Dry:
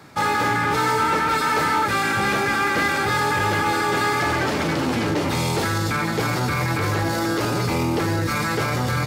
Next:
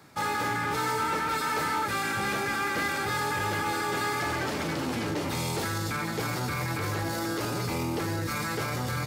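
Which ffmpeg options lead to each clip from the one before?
-af "highshelf=f=7100:g=6.5,volume=0.376"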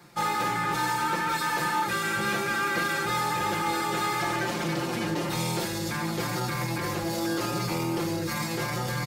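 -af "aecho=1:1:5.7:0.9,volume=0.891"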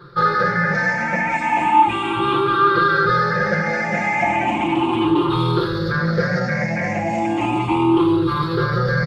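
-af "afftfilt=real='re*pow(10,21/40*sin(2*PI*(0.61*log(max(b,1)*sr/1024/100)/log(2)-(0.35)*(pts-256)/sr)))':imag='im*pow(10,21/40*sin(2*PI*(0.61*log(max(b,1)*sr/1024/100)/log(2)-(0.35)*(pts-256)/sr)))':win_size=1024:overlap=0.75,lowpass=2400,volume=2"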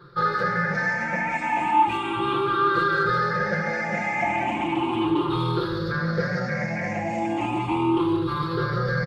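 -filter_complex "[0:a]asplit=2[s0][s1];[s1]adelay=150,highpass=300,lowpass=3400,asoftclip=type=hard:threshold=0.251,volume=0.316[s2];[s0][s2]amix=inputs=2:normalize=0,volume=0.501"

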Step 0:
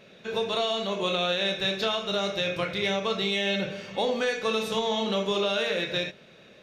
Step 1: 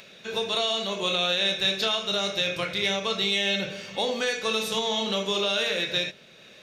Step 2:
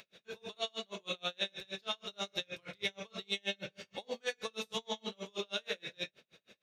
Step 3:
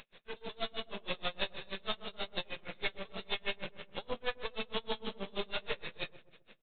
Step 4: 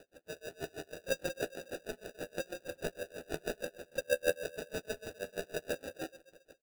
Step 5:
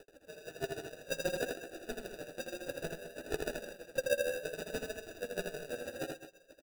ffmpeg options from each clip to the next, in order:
-filter_complex "[0:a]highshelf=f=2700:g=10,acrossover=split=730[s0][s1];[s1]acompressor=mode=upward:threshold=0.00708:ratio=2.5[s2];[s0][s2]amix=inputs=2:normalize=0,volume=0.794"
-af "aeval=exprs='val(0)*pow(10,-38*(0.5-0.5*cos(2*PI*6.3*n/s))/20)':c=same,volume=0.473"
-filter_complex "[0:a]aresample=8000,aeval=exprs='max(val(0),0)':c=same,aresample=44100,asplit=2[s0][s1];[s1]adelay=128,lowpass=f=840:p=1,volume=0.211,asplit=2[s2][s3];[s3]adelay=128,lowpass=f=840:p=1,volume=0.44,asplit=2[s4][s5];[s5]adelay=128,lowpass=f=840:p=1,volume=0.44,asplit=2[s6][s7];[s7]adelay=128,lowpass=f=840:p=1,volume=0.44[s8];[s0][s2][s4][s6][s8]amix=inputs=5:normalize=0,volume=2"
-filter_complex "[0:a]asplit=3[s0][s1][s2];[s0]bandpass=f=530:t=q:w=8,volume=1[s3];[s1]bandpass=f=1840:t=q:w=8,volume=0.501[s4];[s2]bandpass=f=2480:t=q:w=8,volume=0.355[s5];[s3][s4][s5]amix=inputs=3:normalize=0,acrusher=samples=41:mix=1:aa=0.000001,asplit=2[s6][s7];[s7]adelay=12,volume=0.299[s8];[s6][s8]amix=inputs=2:normalize=0,volume=3.35"
-filter_complex "[0:a]flanger=delay=2.2:depth=6.8:regen=45:speed=0.6:shape=triangular,tremolo=f=7.8:d=0.73,asplit=2[s0][s1];[s1]aecho=0:1:81|210:0.631|0.224[s2];[s0][s2]amix=inputs=2:normalize=0,volume=2"

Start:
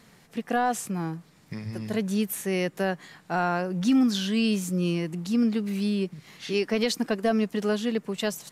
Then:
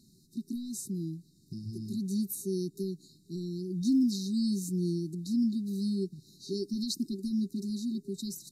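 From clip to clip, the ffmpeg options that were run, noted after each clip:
-af "afftfilt=real='re*(1-between(b*sr/4096,400,3700))':imag='im*(1-between(b*sr/4096,400,3700))':win_size=4096:overlap=0.75,volume=0.596"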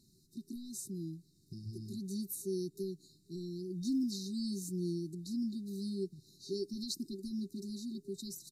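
-af "aecho=1:1:2.2:0.37,volume=0.596"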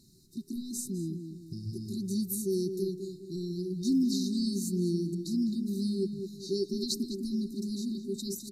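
-filter_complex "[0:a]asplit=2[s0][s1];[s1]adelay=205,lowpass=f=2300:p=1,volume=0.447,asplit=2[s2][s3];[s3]adelay=205,lowpass=f=2300:p=1,volume=0.42,asplit=2[s4][s5];[s5]adelay=205,lowpass=f=2300:p=1,volume=0.42,asplit=2[s6][s7];[s7]adelay=205,lowpass=f=2300:p=1,volume=0.42,asplit=2[s8][s9];[s9]adelay=205,lowpass=f=2300:p=1,volume=0.42[s10];[s0][s2][s4][s6][s8][s10]amix=inputs=6:normalize=0,volume=2.11"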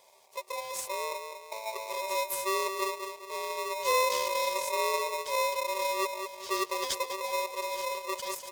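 -af "aeval=exprs='val(0)*sgn(sin(2*PI*770*n/s))':c=same"

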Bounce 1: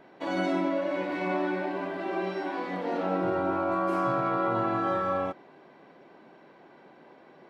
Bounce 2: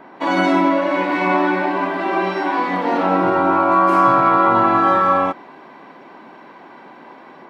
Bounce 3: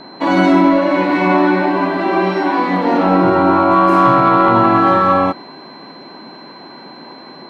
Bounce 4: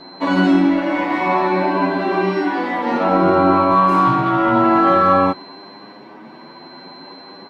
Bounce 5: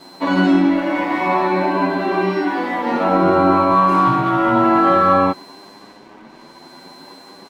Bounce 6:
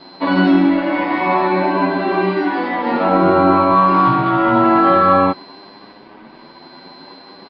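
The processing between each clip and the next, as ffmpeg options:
-filter_complex "[0:a]equalizer=f=250:t=o:w=1:g=8,equalizer=f=1000:t=o:w=1:g=12,equalizer=f=2000:t=o:w=1:g=4,acrossover=split=2200[s0][s1];[s1]dynaudnorm=f=130:g=3:m=2.11[s2];[s0][s2]amix=inputs=2:normalize=0,volume=1.68"
-af "lowshelf=f=320:g=9,aeval=exprs='val(0)+0.00794*sin(2*PI*4100*n/s)':c=same,asoftclip=type=tanh:threshold=0.75,volume=1.26"
-filter_complex "[0:a]asplit=2[s0][s1];[s1]adelay=8.5,afreqshift=0.58[s2];[s0][s2]amix=inputs=2:normalize=1"
-af "aeval=exprs='sgn(val(0))*max(abs(val(0))-0.00447,0)':c=same"
-af "aresample=11025,aresample=44100,volume=1.19"

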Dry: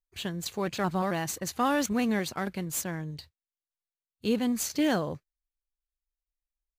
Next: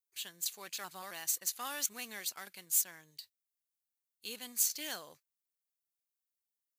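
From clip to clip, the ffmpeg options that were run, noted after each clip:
-af "aderivative,volume=1.26"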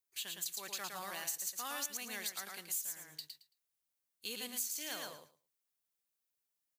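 -af "aecho=1:1:111|222|333:0.562|0.0956|0.0163,acompressor=threshold=0.0112:ratio=4,volume=1.26"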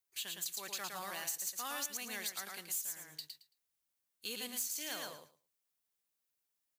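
-af "asoftclip=type=tanh:threshold=0.0447,volume=1.12"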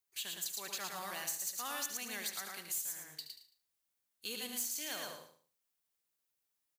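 -af "aecho=1:1:74|148|222:0.316|0.0854|0.0231"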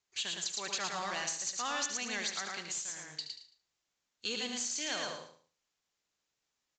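-af "asoftclip=type=tanh:threshold=0.0422,aresample=16000,aresample=44100,volume=2.11"

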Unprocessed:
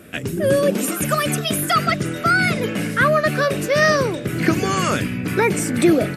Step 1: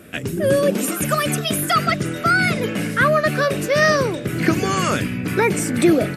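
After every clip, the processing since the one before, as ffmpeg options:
-af anull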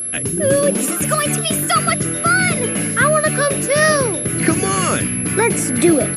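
-af "aeval=exprs='val(0)+0.0708*sin(2*PI*11000*n/s)':c=same,volume=1.19"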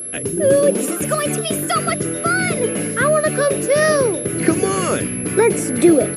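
-af "equalizer=f=440:w=1.2:g=9,volume=0.596"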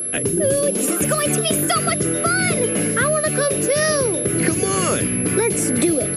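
-filter_complex "[0:a]acrossover=split=120|3000[s0][s1][s2];[s1]acompressor=threshold=0.0891:ratio=6[s3];[s0][s3][s2]amix=inputs=3:normalize=0,volume=1.5"

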